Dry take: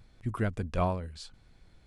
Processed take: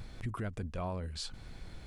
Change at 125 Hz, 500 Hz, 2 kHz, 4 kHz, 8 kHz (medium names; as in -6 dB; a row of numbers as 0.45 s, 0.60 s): -5.5 dB, -8.0 dB, -6.0 dB, +4.0 dB, +4.0 dB